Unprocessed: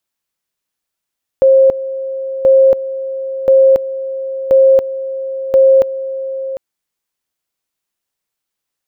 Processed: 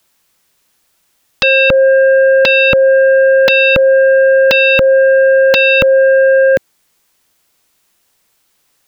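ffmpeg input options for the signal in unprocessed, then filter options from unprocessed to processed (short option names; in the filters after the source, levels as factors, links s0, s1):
-f lavfi -i "aevalsrc='pow(10,(-4.5-14*gte(mod(t,1.03),0.28))/20)*sin(2*PI*534*t)':d=5.15:s=44100"
-filter_complex "[0:a]acrossover=split=210|420[s0][s1][s2];[s2]acompressor=threshold=0.1:ratio=16[s3];[s0][s1][s3]amix=inputs=3:normalize=0,aeval=exprs='0.501*sin(PI/2*6.31*val(0)/0.501)':c=same"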